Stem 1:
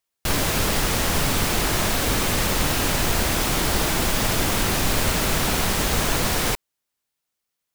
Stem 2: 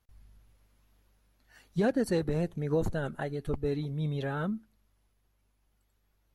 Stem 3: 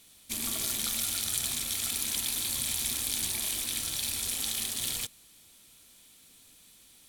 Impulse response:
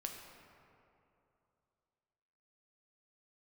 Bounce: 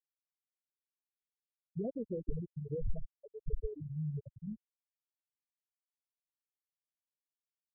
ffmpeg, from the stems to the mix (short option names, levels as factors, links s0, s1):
-filter_complex "[1:a]volume=0.562,asplit=2[s0][s1];[s1]volume=0.422[s2];[2:a]volume=0.158[s3];[s0]aeval=exprs='val(0)+0.000708*(sin(2*PI*50*n/s)+sin(2*PI*2*50*n/s)/2+sin(2*PI*3*50*n/s)/3+sin(2*PI*4*50*n/s)/4+sin(2*PI*5*50*n/s)/5)':c=same,acompressor=threshold=0.00708:ratio=2,volume=1[s4];[3:a]atrim=start_sample=2205[s5];[s2][s5]afir=irnorm=-1:irlink=0[s6];[s3][s4][s6]amix=inputs=3:normalize=0,afftfilt=real='re*gte(hypot(re,im),0.1)':imag='im*gte(hypot(re,im),0.1)':win_size=1024:overlap=0.75,asubboost=boost=6:cutoff=94"